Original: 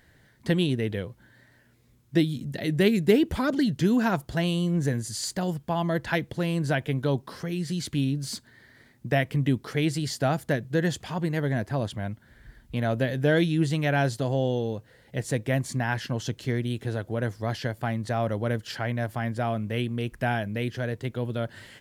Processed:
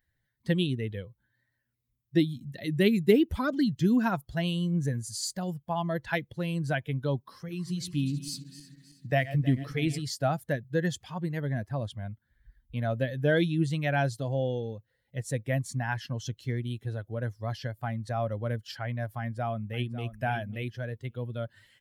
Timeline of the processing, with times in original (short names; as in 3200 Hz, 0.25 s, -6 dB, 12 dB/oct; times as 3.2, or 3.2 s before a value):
7.17–10.02 regenerating reverse delay 0.159 s, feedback 73%, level -10 dB
19.18–20.15 echo throw 0.55 s, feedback 15%, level -9.5 dB
whole clip: per-bin expansion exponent 1.5